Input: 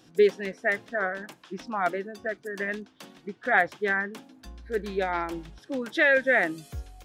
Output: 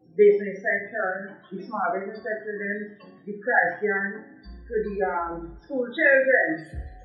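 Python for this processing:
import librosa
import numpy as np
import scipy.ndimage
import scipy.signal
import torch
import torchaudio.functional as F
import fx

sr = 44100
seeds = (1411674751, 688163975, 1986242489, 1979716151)

y = fx.spec_topn(x, sr, count=16)
y = fx.dmg_noise_band(y, sr, seeds[0], low_hz=81.0, high_hz=410.0, level_db=-67.0)
y = fx.rev_double_slope(y, sr, seeds[1], early_s=0.44, late_s=1.9, knee_db=-27, drr_db=-2.0)
y = y * 10.0 ** (-1.5 / 20.0)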